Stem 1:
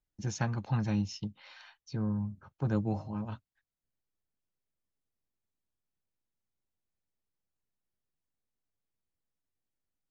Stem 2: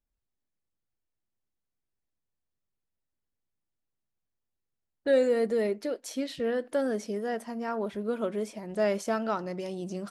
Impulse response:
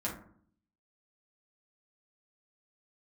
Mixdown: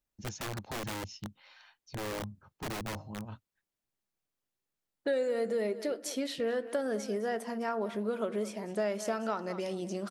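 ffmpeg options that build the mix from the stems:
-filter_complex "[0:a]aeval=exprs='(mod(25.1*val(0)+1,2)-1)/25.1':c=same,volume=0.596[s0];[1:a]highpass=f=270:p=1,volume=1.19,asplit=3[s1][s2][s3];[s2]volume=0.119[s4];[s3]volume=0.158[s5];[2:a]atrim=start_sample=2205[s6];[s4][s6]afir=irnorm=-1:irlink=0[s7];[s5]aecho=0:1:208|416|624:1|0.15|0.0225[s8];[s0][s1][s7][s8]amix=inputs=4:normalize=0,acompressor=threshold=0.0355:ratio=4"

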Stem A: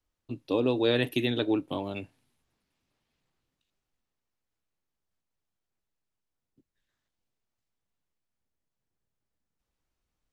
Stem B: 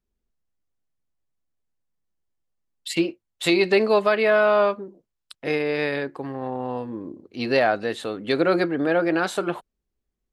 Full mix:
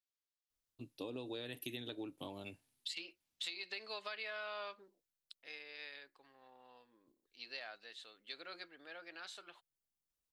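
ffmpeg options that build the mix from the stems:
-filter_complex "[0:a]crystalizer=i=3:c=0,adelay=500,volume=0.211[s0];[1:a]bandpass=f=4200:t=q:w=1.3:csg=0,volume=0.708,afade=t=out:st=4.89:d=0.51:silence=0.281838[s1];[s0][s1]amix=inputs=2:normalize=0,acompressor=threshold=0.01:ratio=16"

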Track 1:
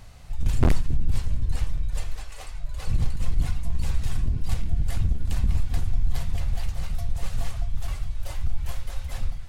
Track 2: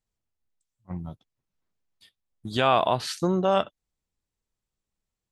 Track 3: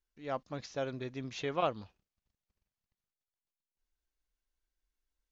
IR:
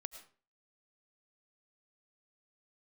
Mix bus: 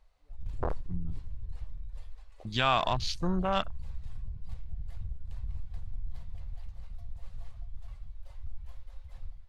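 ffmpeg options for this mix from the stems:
-filter_complex "[0:a]equalizer=f=125:t=o:w=1:g=-3,equalizer=f=250:t=o:w=1:g=-7,equalizer=f=500:t=o:w=1:g=11,equalizer=f=1000:t=o:w=1:g=9,equalizer=f=2000:t=o:w=1:g=5,equalizer=f=4000:t=o:w=1:g=7,volume=0.2[s0];[1:a]equalizer=f=440:t=o:w=1.8:g=-12,volume=1[s1];[2:a]lowpass=1300,acompressor=threshold=0.01:ratio=6,volume=0.168[s2];[s0][s1][s2]amix=inputs=3:normalize=0,afwtdn=0.0126"

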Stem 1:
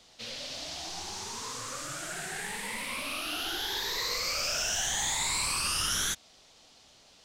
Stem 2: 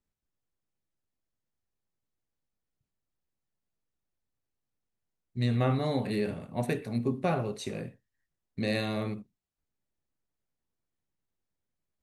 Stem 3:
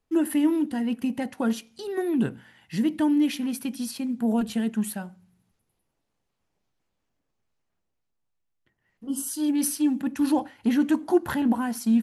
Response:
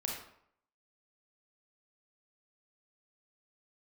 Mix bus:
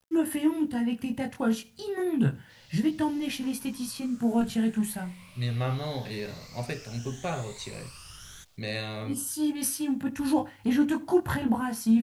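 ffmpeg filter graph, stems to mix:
-filter_complex "[0:a]adelay=2300,volume=0.126[s0];[1:a]lowpass=5400,aemphasis=mode=production:type=bsi,volume=0.794[s1];[2:a]flanger=delay=18.5:depth=4.3:speed=0.3,volume=1.26,asplit=2[s2][s3];[s3]volume=0.0794,aecho=0:1:72:1[s4];[s0][s1][s2][s4]amix=inputs=4:normalize=0,lowshelf=f=170:t=q:w=1.5:g=8.5,acrusher=bits=10:mix=0:aa=0.000001"

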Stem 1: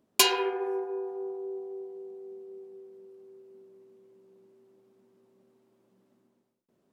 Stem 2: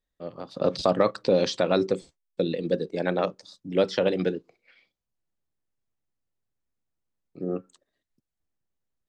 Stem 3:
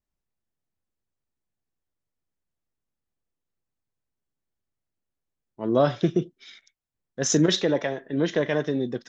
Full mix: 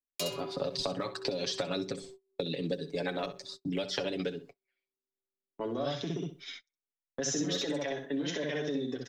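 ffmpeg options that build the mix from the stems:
-filter_complex "[0:a]acrossover=split=370|3000[s0][s1][s2];[s1]acompressor=threshold=0.00631:ratio=2.5[s3];[s0][s3][s2]amix=inputs=3:normalize=0,volume=0.398,asplit=2[s4][s5];[s5]volume=0.266[s6];[1:a]acompressor=threshold=0.0708:ratio=16,aphaser=in_gain=1:out_gain=1:delay=3.2:decay=0.3:speed=1.1:type=triangular,volume=1.26,asplit=2[s7][s8];[s8]volume=0.2[s9];[2:a]acontrast=62,volume=0.562,asplit=2[s10][s11];[s11]volume=0.335[s12];[s4][s10]amix=inputs=2:normalize=0,highpass=f=190:w=0.5412,highpass=f=190:w=1.3066,alimiter=limit=0.0944:level=0:latency=1:release=69,volume=1[s13];[s6][s9][s12]amix=inputs=3:normalize=0,aecho=0:1:64|128|192:1|0.17|0.0289[s14];[s7][s13][s14]amix=inputs=3:normalize=0,agate=range=0.0282:threshold=0.00501:ratio=16:detection=peak,aecho=1:1:7.1:0.69,acrossover=split=130|2700|5600[s15][s16][s17][s18];[s15]acompressor=threshold=0.00316:ratio=4[s19];[s16]acompressor=threshold=0.0224:ratio=4[s20];[s17]acompressor=threshold=0.0141:ratio=4[s21];[s18]acompressor=threshold=0.00891:ratio=4[s22];[s19][s20][s21][s22]amix=inputs=4:normalize=0"

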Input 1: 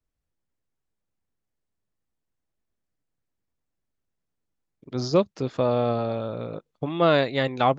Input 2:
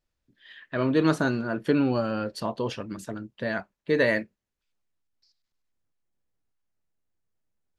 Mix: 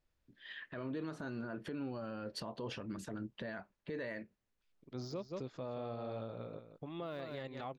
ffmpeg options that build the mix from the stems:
-filter_complex "[0:a]deesser=0.85,volume=0.211,asplit=2[s0][s1];[s1]volume=0.316[s2];[1:a]highshelf=f=6600:g=-10.5,acompressor=threshold=0.0355:ratio=6,volume=1.06[s3];[s2]aecho=0:1:176:1[s4];[s0][s3][s4]amix=inputs=3:normalize=0,alimiter=level_in=2.66:limit=0.0631:level=0:latency=1:release=153,volume=0.376"

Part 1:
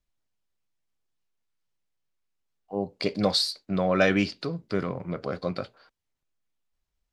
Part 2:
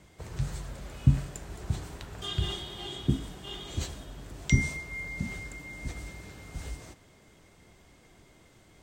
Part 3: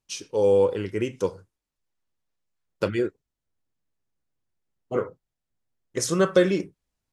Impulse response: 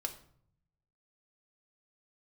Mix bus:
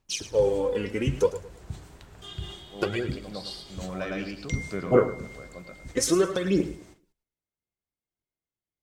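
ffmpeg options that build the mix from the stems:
-filter_complex "[0:a]volume=0.75,asplit=2[s0][s1];[s1]volume=0.251[s2];[1:a]agate=range=0.0224:threshold=0.00282:ratio=16:detection=peak,volume=0.473[s3];[2:a]acompressor=threshold=0.0631:ratio=5,aphaser=in_gain=1:out_gain=1:delay=4.2:decay=0.66:speed=0.6:type=sinusoidal,volume=1.12,asplit=3[s4][s5][s6];[s5]volume=0.211[s7];[s6]apad=whole_len=314158[s8];[s0][s8]sidechaincompress=threshold=0.00398:ratio=5:attack=16:release=1260[s9];[s2][s7]amix=inputs=2:normalize=0,aecho=0:1:108|216|324|432:1|0.3|0.09|0.027[s10];[s9][s3][s4][s10]amix=inputs=4:normalize=0"

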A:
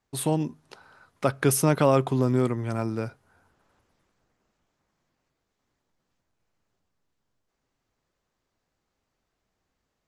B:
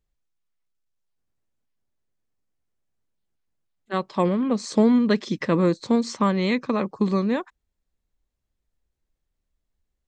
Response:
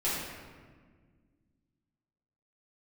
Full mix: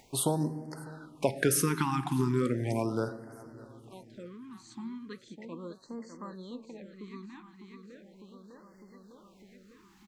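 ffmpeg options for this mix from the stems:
-filter_complex "[0:a]acompressor=threshold=0.0708:ratio=3,volume=1.06,asplit=3[s0][s1][s2];[s1]volume=0.126[s3];[s2]volume=0.0708[s4];[1:a]bandreject=f=5300:w=5.2,flanger=delay=1.7:depth=4.9:regen=77:speed=0.88:shape=triangular,equalizer=f=680:t=o:w=0.43:g=-6,volume=0.158,asplit=2[s5][s6];[s6]volume=0.355[s7];[2:a]atrim=start_sample=2205[s8];[s3][s8]afir=irnorm=-1:irlink=0[s9];[s4][s7]amix=inputs=2:normalize=0,aecho=0:1:603|1206|1809|2412|3015|3618|4221|4824:1|0.54|0.292|0.157|0.085|0.0459|0.0248|0.0134[s10];[s0][s5][s9][s10]amix=inputs=4:normalize=0,lowshelf=f=160:g=-7.5,acompressor=mode=upward:threshold=0.00708:ratio=2.5,afftfilt=real='re*(1-between(b*sr/1024,510*pow(3100/510,0.5+0.5*sin(2*PI*0.37*pts/sr))/1.41,510*pow(3100/510,0.5+0.5*sin(2*PI*0.37*pts/sr))*1.41))':imag='im*(1-between(b*sr/1024,510*pow(3100/510,0.5+0.5*sin(2*PI*0.37*pts/sr))/1.41,510*pow(3100/510,0.5+0.5*sin(2*PI*0.37*pts/sr))*1.41))':win_size=1024:overlap=0.75"

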